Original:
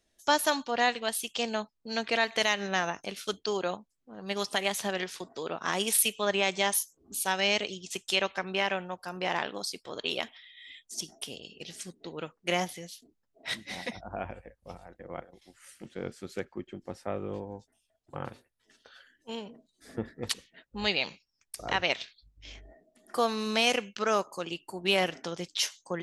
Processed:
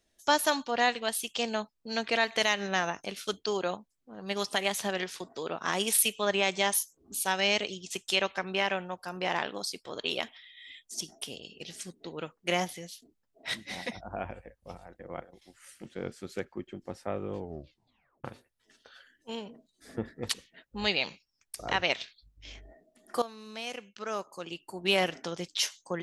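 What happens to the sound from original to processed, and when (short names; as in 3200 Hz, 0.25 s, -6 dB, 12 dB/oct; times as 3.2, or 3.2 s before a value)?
17.36 tape stop 0.88 s
23.22–24.91 fade in quadratic, from -15.5 dB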